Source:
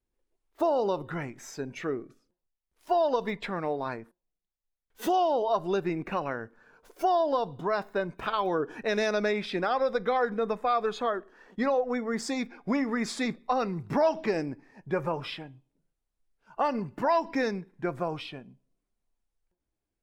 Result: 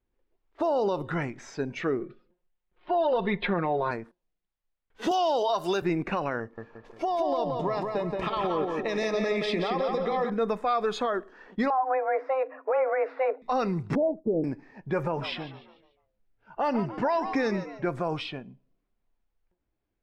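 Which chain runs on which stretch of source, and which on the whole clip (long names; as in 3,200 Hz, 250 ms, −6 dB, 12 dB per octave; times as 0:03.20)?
0:02.00–0:03.91: Butterworth low-pass 3,900 Hz + parametric band 430 Hz +5 dB 0.36 octaves + comb filter 5.6 ms, depth 74%
0:05.11–0:05.82: spectral tilt +3 dB per octave + multiband upward and downward compressor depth 100%
0:06.40–0:10.30: downward compressor 10 to 1, threshold −28 dBFS + Butterworth band-reject 1,500 Hz, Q 5 + feedback echo with a low-pass in the loop 175 ms, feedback 47%, low-pass 3,800 Hz, level −3.5 dB
0:11.70–0:13.42: low-pass filter 1,600 Hz 24 dB per octave + frequency shifter +260 Hz
0:13.95–0:14.44: Butterworth low-pass 590 Hz + downward expander −33 dBFS
0:15.02–0:17.86: high-shelf EQ 9,000 Hz −11.5 dB + notch filter 1,100 Hz, Q 8.8 + echo with shifted repeats 146 ms, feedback 43%, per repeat +98 Hz, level −14.5 dB
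whole clip: low-pass that shuts in the quiet parts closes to 2,900 Hz, open at −25.5 dBFS; de-essing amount 80%; brickwall limiter −22.5 dBFS; level +4.5 dB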